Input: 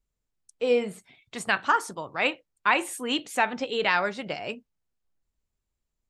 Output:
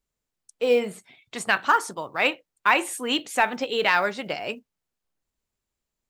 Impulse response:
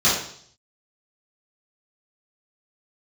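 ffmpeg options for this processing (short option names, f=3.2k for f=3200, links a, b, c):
-af "lowshelf=f=120:g=-10.5,acontrast=34,acrusher=bits=9:mode=log:mix=0:aa=0.000001,volume=-2dB"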